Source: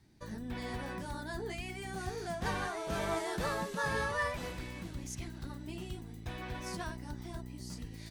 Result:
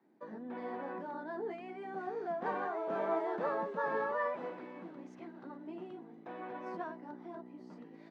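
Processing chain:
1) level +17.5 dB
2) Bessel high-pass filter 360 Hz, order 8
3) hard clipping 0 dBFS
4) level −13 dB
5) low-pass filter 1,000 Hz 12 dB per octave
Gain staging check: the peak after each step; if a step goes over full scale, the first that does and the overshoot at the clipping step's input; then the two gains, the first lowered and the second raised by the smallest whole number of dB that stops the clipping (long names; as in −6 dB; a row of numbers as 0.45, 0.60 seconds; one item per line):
−4.5, −5.0, −5.0, −18.0, −22.0 dBFS
no step passes full scale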